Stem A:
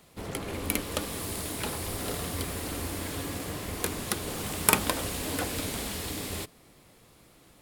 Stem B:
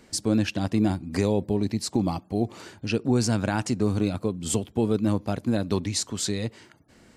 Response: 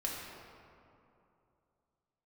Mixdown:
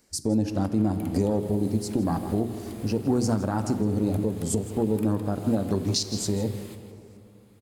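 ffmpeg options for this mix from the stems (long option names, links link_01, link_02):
-filter_complex "[0:a]bandreject=frequency=5600:width=13,acompressor=threshold=-38dB:ratio=2.5,adelay=300,volume=-11.5dB,asplit=3[link_01][link_02][link_03];[link_02]volume=-4.5dB[link_04];[link_03]volume=-6.5dB[link_05];[1:a]afwtdn=0.0282,bandreject=frequency=60:width_type=h:width=6,bandreject=frequency=120:width_type=h:width=6,bandreject=frequency=180:width_type=h:width=6,bandreject=frequency=240:width_type=h:width=6,bandreject=frequency=300:width_type=h:width=6,bandreject=frequency=360:width_type=h:width=6,bandreject=frequency=420:width_type=h:width=6,aexciter=amount=2.8:drive=6.7:freq=4600,volume=2.5dB,asplit=3[link_06][link_07][link_08];[link_07]volume=-11dB[link_09];[link_08]volume=-13dB[link_10];[2:a]atrim=start_sample=2205[link_11];[link_04][link_09]amix=inputs=2:normalize=0[link_12];[link_12][link_11]afir=irnorm=-1:irlink=0[link_13];[link_05][link_10]amix=inputs=2:normalize=0,aecho=0:1:161:1[link_14];[link_01][link_06][link_13][link_14]amix=inputs=4:normalize=0,alimiter=limit=-14dB:level=0:latency=1:release=266"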